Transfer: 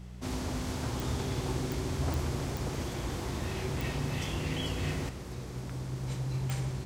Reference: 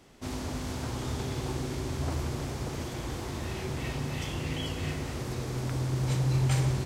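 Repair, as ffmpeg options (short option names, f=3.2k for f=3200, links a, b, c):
-af "adeclick=t=4,bandreject=f=61.3:t=h:w=4,bandreject=f=122.6:t=h:w=4,bandreject=f=183.9:t=h:w=4,asetnsamples=n=441:p=0,asendcmd='5.09 volume volume 7.5dB',volume=0dB"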